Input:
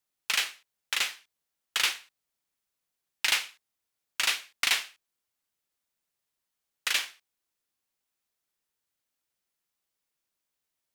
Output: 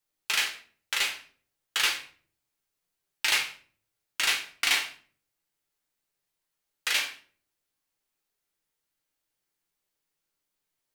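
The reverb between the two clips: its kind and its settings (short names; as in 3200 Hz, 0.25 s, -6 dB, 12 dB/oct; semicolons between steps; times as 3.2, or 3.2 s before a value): shoebox room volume 40 m³, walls mixed, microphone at 0.55 m; gain -1 dB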